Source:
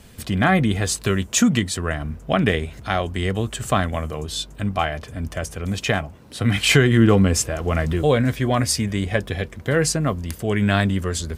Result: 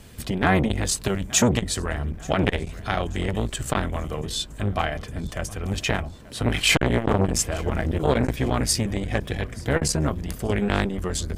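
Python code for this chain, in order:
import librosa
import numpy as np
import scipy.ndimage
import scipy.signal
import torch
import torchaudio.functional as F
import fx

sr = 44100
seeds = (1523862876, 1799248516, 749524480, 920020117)

y = fx.octave_divider(x, sr, octaves=1, level_db=-3.0)
y = fx.echo_feedback(y, sr, ms=882, feedback_pct=50, wet_db=-22.5)
y = fx.transformer_sat(y, sr, knee_hz=860.0)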